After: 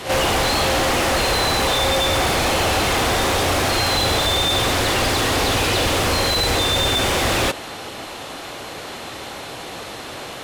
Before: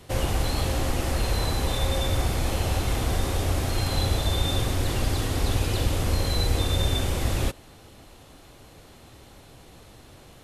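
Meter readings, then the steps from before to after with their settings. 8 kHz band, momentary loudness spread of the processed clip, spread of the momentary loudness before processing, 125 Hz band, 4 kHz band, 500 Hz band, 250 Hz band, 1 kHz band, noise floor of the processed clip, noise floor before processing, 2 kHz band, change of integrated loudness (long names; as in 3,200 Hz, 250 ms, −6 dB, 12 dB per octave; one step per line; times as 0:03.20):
+10.5 dB, 15 LU, 2 LU, −0.5 dB, +12.5 dB, +10.5 dB, +6.5 dB, +13.0 dB, −33 dBFS, −50 dBFS, +14.5 dB, +8.5 dB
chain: backwards echo 47 ms −16 dB
mid-hump overdrive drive 29 dB, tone 4,000 Hz, clips at −10 dBFS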